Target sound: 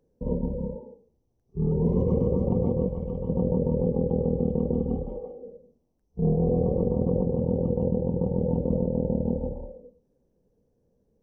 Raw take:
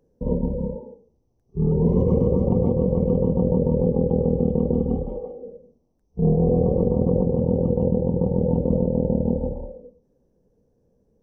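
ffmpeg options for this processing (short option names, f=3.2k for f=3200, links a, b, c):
-filter_complex "[0:a]asettb=1/sr,asplit=3[a][b][c];[a]atrim=end=2.884[d];[b]atrim=start=2.88:end=3.29,asetpts=PTS-STARTPTS,afade=t=in:d=0.004:c=qsin,afade=t=out:st=0.406:d=0.004:c=qsin,equalizer=f=290:w=0.42:g=-9[e];[c]atrim=start=3.286[f];[d][e]acrossfade=d=0.004:c1=hsin:c2=qsin[g];[g][f]acrossfade=d=0.004:c1=qsin:c2=hsin,volume=-4.5dB"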